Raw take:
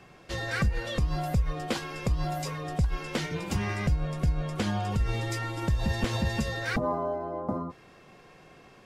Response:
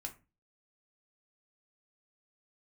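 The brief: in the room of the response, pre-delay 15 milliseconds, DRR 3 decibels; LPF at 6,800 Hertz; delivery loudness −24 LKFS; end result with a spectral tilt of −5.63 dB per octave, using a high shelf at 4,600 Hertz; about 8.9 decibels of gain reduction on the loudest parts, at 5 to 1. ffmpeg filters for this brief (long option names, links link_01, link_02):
-filter_complex "[0:a]lowpass=6800,highshelf=frequency=4600:gain=3.5,acompressor=threshold=-31dB:ratio=5,asplit=2[link_01][link_02];[1:a]atrim=start_sample=2205,adelay=15[link_03];[link_02][link_03]afir=irnorm=-1:irlink=0,volume=-0.5dB[link_04];[link_01][link_04]amix=inputs=2:normalize=0,volume=9.5dB"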